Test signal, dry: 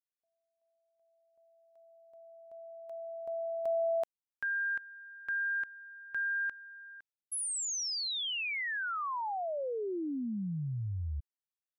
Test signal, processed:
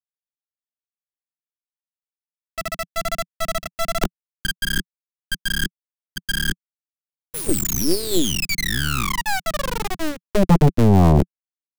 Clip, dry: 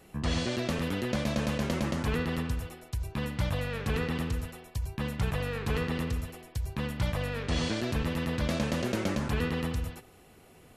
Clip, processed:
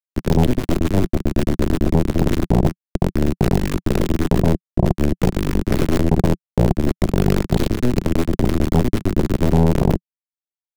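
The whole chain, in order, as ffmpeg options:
-af "afftfilt=real='re*gte(hypot(re,im),0.0282)':imag='im*gte(hypot(re,im),0.0282)':win_size=1024:overlap=0.75,equalizer=f=4.8k:w=0.5:g=-10,aeval=exprs='max(val(0),0)':c=same,areverse,acompressor=threshold=-46dB:ratio=16:attack=5.9:release=350:knee=1:detection=peak,areverse,flanger=delay=18.5:depth=6.3:speed=1.2,acrusher=bits=7:mix=0:aa=0.000001,lowshelf=f=260:t=q:w=3:g=13.5,aeval=exprs='0.0631*(cos(1*acos(clip(val(0)/0.0631,-1,1)))-cos(1*PI/2))+0.02*(cos(8*acos(clip(val(0)/0.0631,-1,1)))-cos(8*PI/2))':c=same,alimiter=level_in=29.5dB:limit=-1dB:release=50:level=0:latency=1,volume=-4.5dB"

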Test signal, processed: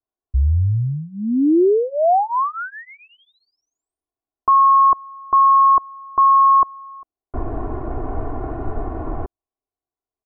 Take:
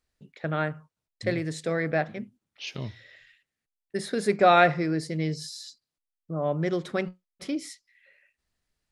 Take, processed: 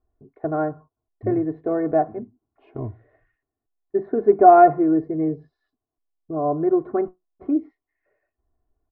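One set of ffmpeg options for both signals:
-af "lowpass=f=1k:w=0.5412,lowpass=f=1k:w=1.3066,aecho=1:1:2.8:0.92,volume=5dB"

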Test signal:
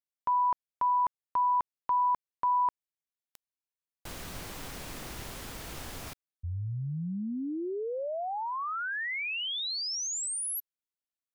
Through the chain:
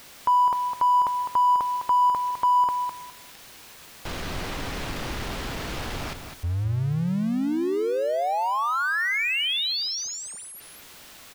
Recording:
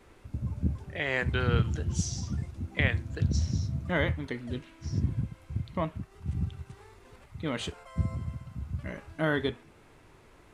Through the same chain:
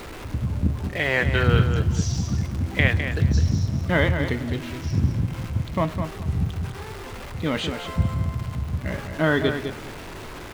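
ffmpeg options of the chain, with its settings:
-filter_complex "[0:a]aeval=exprs='val(0)+0.5*0.0106*sgn(val(0))':c=same,asplit=2[a][b];[b]adelay=206,lowpass=f=4.8k:p=1,volume=-7.5dB,asplit=2[c][d];[d]adelay=206,lowpass=f=4.8k:p=1,volume=0.2,asplit=2[e][f];[f]adelay=206,lowpass=f=4.8k:p=1,volume=0.2[g];[a][c][e][g]amix=inputs=4:normalize=0,acrossover=split=5300[h][i];[i]acompressor=threshold=-53dB:ratio=4:attack=1:release=60[j];[h][j]amix=inputs=2:normalize=0,volume=6.5dB"

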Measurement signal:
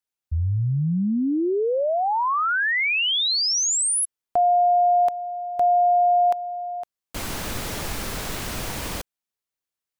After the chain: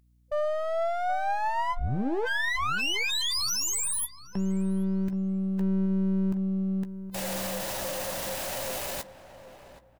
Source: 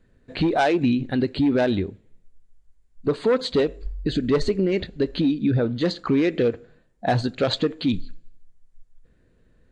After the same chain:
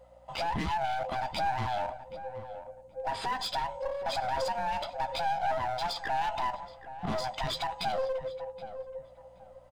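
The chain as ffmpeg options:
-filter_complex "[0:a]afftfilt=real='real(if(lt(b,1008),b+24*(1-2*mod(floor(b/24),2)),b),0)':imag='imag(if(lt(b,1008),b+24*(1-2*mod(floor(b/24),2)),b),0)':win_size=2048:overlap=0.75,highshelf=f=6.7k:g=5.5,asplit=2[a][b];[b]acompressor=threshold=-32dB:ratio=6:attack=5.8:release=78:knee=6:detection=peak,volume=2.5dB[c];[a][c]amix=inputs=2:normalize=0,alimiter=limit=-16dB:level=0:latency=1:release=21,aeval=exprs='val(0)+0.00158*(sin(2*PI*60*n/s)+sin(2*PI*2*60*n/s)/2+sin(2*PI*3*60*n/s)/3+sin(2*PI*4*60*n/s)/4+sin(2*PI*5*60*n/s)/5)':c=same,aeval=exprs='clip(val(0),-1,0.0531)':c=same,asplit=2[d][e];[e]adelay=15,volume=-11.5dB[f];[d][f]amix=inputs=2:normalize=0,asplit=2[g][h];[h]adelay=774,lowpass=f=1.5k:p=1,volume=-12.5dB,asplit=2[i][j];[j]adelay=774,lowpass=f=1.5k:p=1,volume=0.28,asplit=2[k][l];[l]adelay=774,lowpass=f=1.5k:p=1,volume=0.28[m];[i][k][m]amix=inputs=3:normalize=0[n];[g][n]amix=inputs=2:normalize=0,volume=-7dB"

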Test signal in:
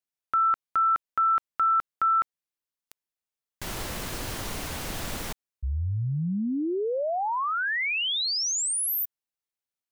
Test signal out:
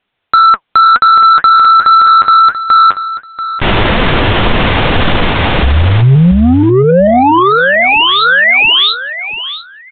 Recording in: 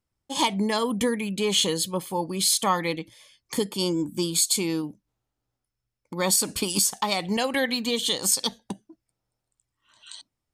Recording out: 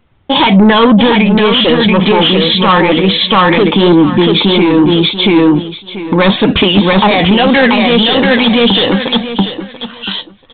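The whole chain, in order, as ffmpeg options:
-af "flanger=delay=3.9:depth=6.5:regen=57:speed=2:shape=sinusoidal,aresample=8000,asoftclip=type=tanh:threshold=-30dB,aresample=44100,aecho=1:1:686|1372|2058:0.668|0.12|0.0217,alimiter=level_in=34dB:limit=-1dB:release=50:level=0:latency=1,volume=-1dB"

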